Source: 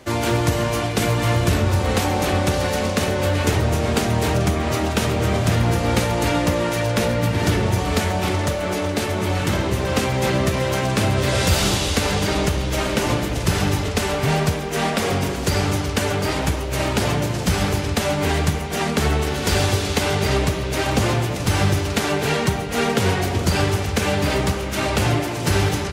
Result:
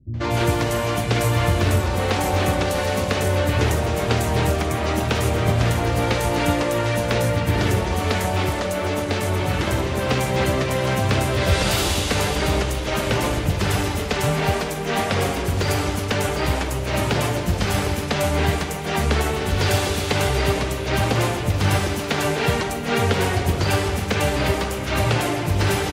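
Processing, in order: three bands offset in time lows, mids, highs 140/240 ms, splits 210/5900 Hz

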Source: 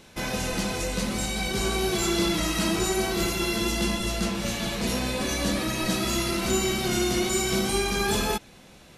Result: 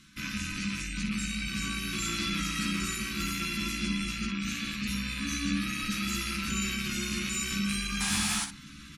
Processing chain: rattle on loud lows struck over -36 dBFS, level -18 dBFS; Chebyshev band-stop 290–1200 Hz, order 3; hum notches 60/120/180 Hz; spectral gate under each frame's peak -25 dB strong; reverse; upward compressor, threshold -32 dBFS; reverse; painted sound noise, 8.00–8.45 s, 700–11000 Hz -27 dBFS; Chebyshev shaper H 2 -20 dB, 4 -21 dB, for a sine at -10.5 dBFS; early reflections 14 ms -5.5 dB, 60 ms -8.5 dB; on a send at -12 dB: reverberation RT60 0.30 s, pre-delay 3 ms; on the sum: trim -6.5 dB

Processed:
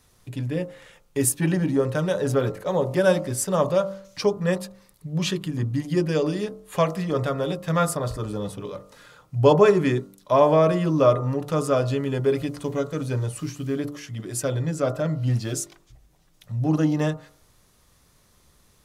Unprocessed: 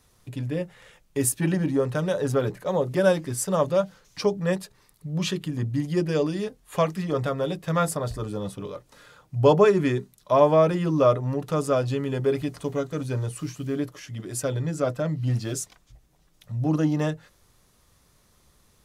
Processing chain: de-hum 48.56 Hz, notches 29; trim +2 dB

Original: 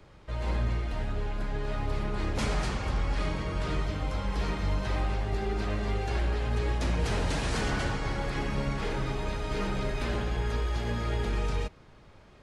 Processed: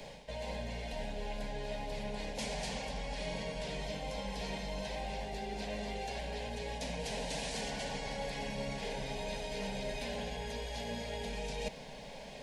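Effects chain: bass shelf 250 Hz -11 dB; reverse; compression 6:1, threshold -49 dBFS, peak gain reduction 17.5 dB; reverse; static phaser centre 340 Hz, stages 6; trim +15 dB

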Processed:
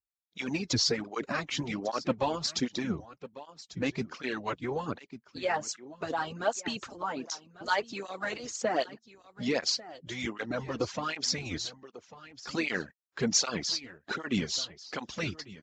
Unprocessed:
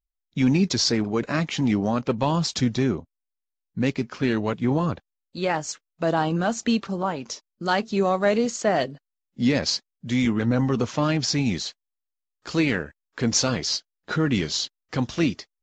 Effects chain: delay 1145 ms -16.5 dB; harmonic-percussive split harmonic -18 dB; cancelling through-zero flanger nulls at 1.3 Hz, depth 5.5 ms

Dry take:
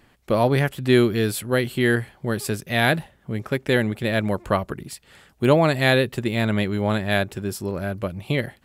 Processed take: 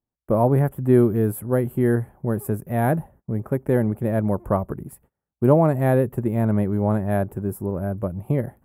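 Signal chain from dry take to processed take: FFT filter 930 Hz 0 dB, 4.1 kHz -29 dB, 12 kHz +8 dB; gate -48 dBFS, range -32 dB; tone controls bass +3 dB, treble -8 dB

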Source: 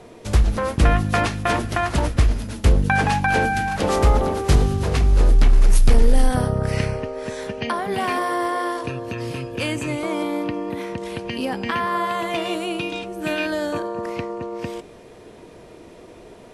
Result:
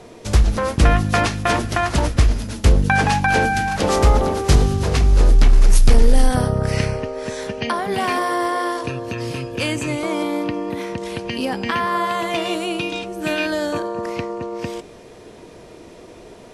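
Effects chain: peaking EQ 5.7 kHz +4 dB 1.1 oct; trim +2 dB

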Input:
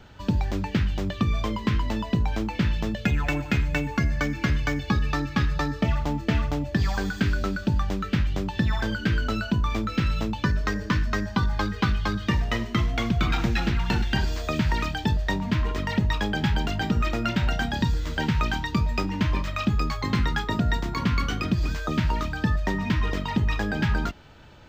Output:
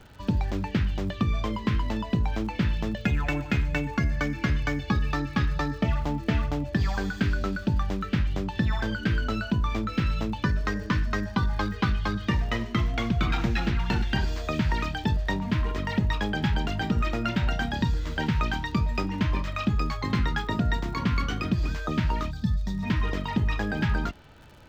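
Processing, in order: time-frequency box 22.31–22.83 s, 250–3300 Hz -15 dB; crackle 77 per s -38 dBFS; treble shelf 5.6 kHz -5.5 dB; trim -1.5 dB

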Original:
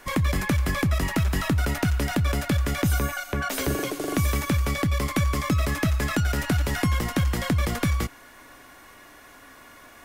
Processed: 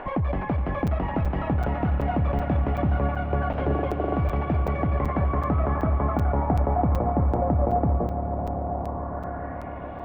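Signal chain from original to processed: treble shelf 2.3 kHz +8 dB; upward compressor, threshold -24 dBFS; low-pass sweep 2.9 kHz -> 690 Hz, 4.39–6.89 s; overload inside the chain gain 19 dB; low-pass sweep 780 Hz -> 3.5 kHz, 8.75–10.00 s; on a send: echo with a slow build-up 139 ms, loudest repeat 5, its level -15.5 dB; on the sum: crackling interface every 0.38 s, samples 256, zero, from 0.87 s; trim -1.5 dB

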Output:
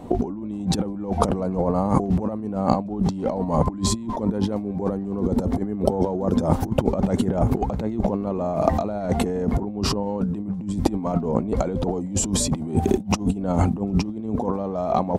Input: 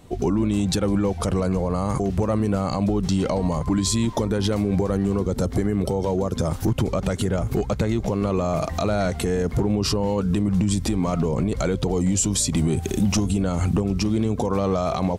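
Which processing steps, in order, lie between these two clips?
FFT filter 140 Hz 0 dB, 220 Hz +11 dB, 420 Hz +6 dB, 860 Hz +10 dB, 1.3 kHz 0 dB, 3 kHz -5 dB, 6 kHz -7 dB; compressor with a negative ratio -20 dBFS, ratio -0.5; trim -1.5 dB

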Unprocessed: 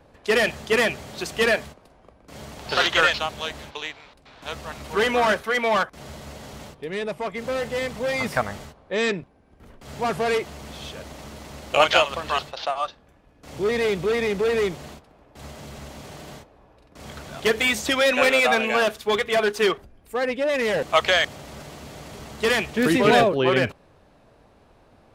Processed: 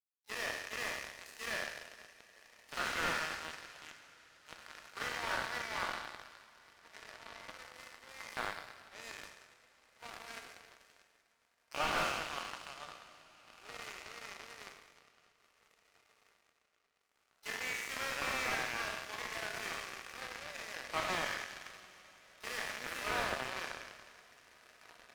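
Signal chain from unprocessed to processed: spectral sustain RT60 2.22 s; high-pass 920 Hz 12 dB/octave; peaking EQ 3.5 kHz -13 dB 0.28 oct; in parallel at 0 dB: compression 20:1, threshold -27 dBFS, peak gain reduction 16 dB; on the sum: echo that smears into a reverb 1858 ms, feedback 53%, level -8 dB; power-law waveshaper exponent 3; one-sided clip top -16 dBFS; harmony voices +12 st -18 dB; two-slope reverb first 0.41 s, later 4.8 s, from -18 dB, DRR 11.5 dB; slew-rate limiter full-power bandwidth 47 Hz; trim +2 dB

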